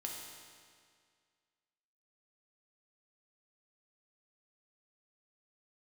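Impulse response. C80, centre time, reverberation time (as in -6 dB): 3.0 dB, 82 ms, 2.0 s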